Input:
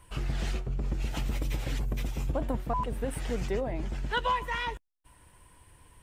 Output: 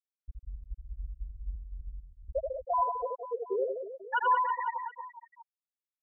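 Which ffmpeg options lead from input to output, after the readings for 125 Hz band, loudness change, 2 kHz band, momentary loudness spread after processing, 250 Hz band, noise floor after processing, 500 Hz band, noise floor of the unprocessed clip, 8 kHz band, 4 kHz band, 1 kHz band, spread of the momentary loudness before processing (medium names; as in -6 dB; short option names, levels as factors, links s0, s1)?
under -10 dB, 0.0 dB, -1.5 dB, 20 LU, under -15 dB, under -85 dBFS, +1.0 dB, -61 dBFS, under -35 dB, under -10 dB, +4.0 dB, 5 LU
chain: -af "highpass=f=59:p=1,acontrast=56,lowpass=3600,equalizer=f=130:w=0.57:g=-12,afftfilt=real='re*gte(hypot(re,im),0.355)':imag='im*gte(hypot(re,im),0.355)':win_size=1024:overlap=0.75,highshelf=f=2100:g=-8.5,aecho=1:1:80|184|319.2|495|723.4:0.631|0.398|0.251|0.158|0.1"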